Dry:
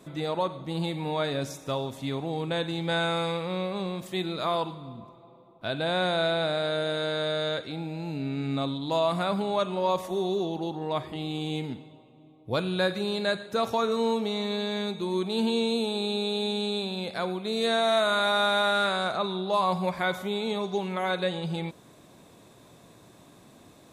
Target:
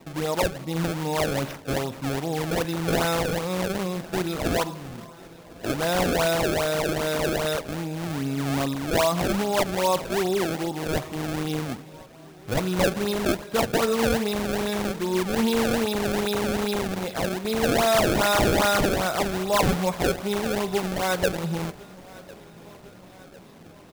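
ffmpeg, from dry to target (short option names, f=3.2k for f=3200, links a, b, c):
-af "acrusher=samples=26:mix=1:aa=0.000001:lfo=1:lforange=41.6:lforate=2.5,aecho=1:1:1052|2104|3156|4208:0.075|0.0442|0.0261|0.0154,volume=3.5dB"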